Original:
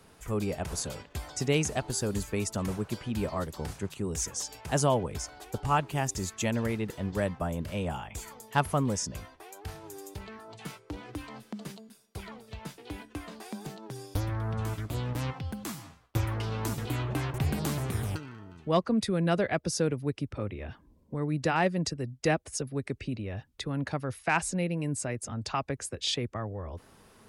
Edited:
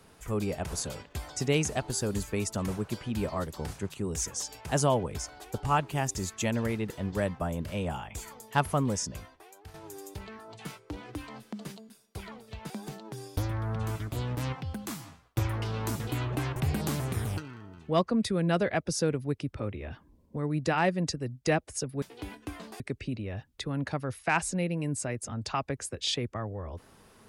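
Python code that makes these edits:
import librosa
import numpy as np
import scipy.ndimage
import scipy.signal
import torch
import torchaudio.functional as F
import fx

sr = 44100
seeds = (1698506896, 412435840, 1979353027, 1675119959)

y = fx.edit(x, sr, fx.fade_out_to(start_s=9.02, length_s=0.72, floor_db=-10.5),
    fx.move(start_s=12.7, length_s=0.78, to_s=22.8), tone=tone)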